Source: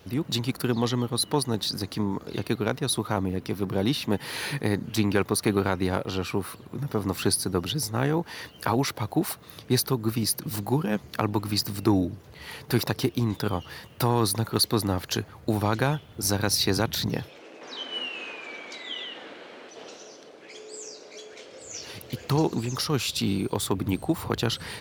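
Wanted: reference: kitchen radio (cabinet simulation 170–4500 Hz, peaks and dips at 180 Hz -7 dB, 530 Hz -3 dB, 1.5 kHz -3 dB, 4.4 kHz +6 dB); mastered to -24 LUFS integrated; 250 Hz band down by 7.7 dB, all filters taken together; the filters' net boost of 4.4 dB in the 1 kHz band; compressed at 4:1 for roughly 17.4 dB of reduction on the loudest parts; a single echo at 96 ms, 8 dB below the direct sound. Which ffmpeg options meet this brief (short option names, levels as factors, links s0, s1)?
-af "equalizer=f=250:t=o:g=-8,equalizer=f=1000:t=o:g=6.5,acompressor=threshold=0.0112:ratio=4,highpass=170,equalizer=f=180:t=q:w=4:g=-7,equalizer=f=530:t=q:w=4:g=-3,equalizer=f=1500:t=q:w=4:g=-3,equalizer=f=4400:t=q:w=4:g=6,lowpass=f=4500:w=0.5412,lowpass=f=4500:w=1.3066,aecho=1:1:96:0.398,volume=7.94"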